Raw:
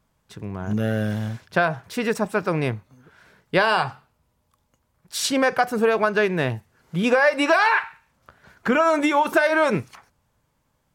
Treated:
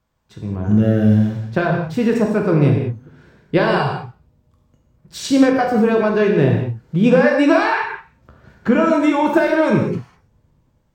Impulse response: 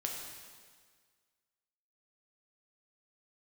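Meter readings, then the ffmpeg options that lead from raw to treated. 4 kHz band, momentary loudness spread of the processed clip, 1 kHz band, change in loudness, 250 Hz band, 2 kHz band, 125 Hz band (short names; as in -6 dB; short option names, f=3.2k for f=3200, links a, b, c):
-1.5 dB, 13 LU, +1.0 dB, +5.0 dB, +10.0 dB, -1.0 dB, +10.5 dB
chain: -filter_complex "[0:a]equalizer=f=11k:w=2.2:g=-14.5,acrossover=split=430|4400[a][b][c];[a]dynaudnorm=f=170:g=5:m=14.5dB[d];[d][b][c]amix=inputs=3:normalize=0[e];[1:a]atrim=start_sample=2205,afade=t=out:st=0.33:d=0.01,atrim=end_sample=14994,asetrate=57330,aresample=44100[f];[e][f]afir=irnorm=-1:irlink=0"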